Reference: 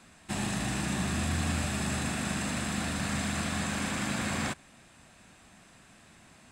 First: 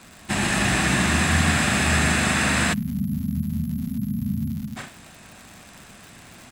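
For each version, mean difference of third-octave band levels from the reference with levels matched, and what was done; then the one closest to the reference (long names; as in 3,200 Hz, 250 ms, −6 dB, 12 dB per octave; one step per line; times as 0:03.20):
8.0 dB: bouncing-ball delay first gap 130 ms, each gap 0.7×, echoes 5
time-frequency box erased 0:02.73–0:04.77, 270–11,000 Hz
surface crackle 190 per second −42 dBFS
dynamic equaliser 1,900 Hz, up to +6 dB, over −50 dBFS, Q 1.1
level +8 dB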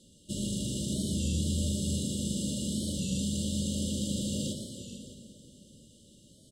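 10.5 dB: brick-wall band-stop 610–2,800 Hz
on a send: multi-tap delay 123/442/611 ms −9.5/−11.5/−15.5 dB
on the sum: dense smooth reverb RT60 3.8 s, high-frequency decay 0.75×, DRR 7.5 dB
wow of a warped record 33 1/3 rpm, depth 100 cents
level −1 dB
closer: first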